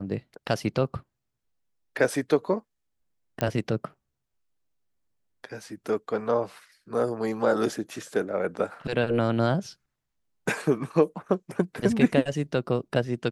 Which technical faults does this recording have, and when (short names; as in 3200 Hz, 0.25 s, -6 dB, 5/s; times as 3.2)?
3.41 pop -11 dBFS